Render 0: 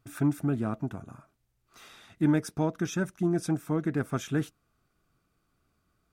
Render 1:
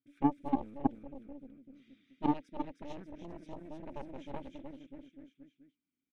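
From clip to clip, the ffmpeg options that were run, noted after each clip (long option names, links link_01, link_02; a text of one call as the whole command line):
ffmpeg -i in.wav -filter_complex "[0:a]asplit=3[link_01][link_02][link_03];[link_01]bandpass=frequency=270:width_type=q:width=8,volume=0dB[link_04];[link_02]bandpass=frequency=2290:width_type=q:width=8,volume=-6dB[link_05];[link_03]bandpass=frequency=3010:width_type=q:width=8,volume=-9dB[link_06];[link_04][link_05][link_06]amix=inputs=3:normalize=0,aecho=1:1:310|589|840.1|1066|1269:0.631|0.398|0.251|0.158|0.1,aeval=exprs='0.0891*(cos(1*acos(clip(val(0)/0.0891,-1,1)))-cos(1*PI/2))+0.0355*(cos(3*acos(clip(val(0)/0.0891,-1,1)))-cos(3*PI/2))+0.00355*(cos(6*acos(clip(val(0)/0.0891,-1,1)))-cos(6*PI/2))':channel_layout=same,volume=7.5dB" out.wav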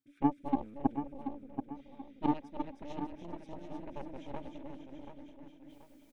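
ffmpeg -i in.wav -af "areverse,acompressor=mode=upward:threshold=-50dB:ratio=2.5,areverse,aecho=1:1:732|1464|2196|2928:0.355|0.135|0.0512|0.0195" out.wav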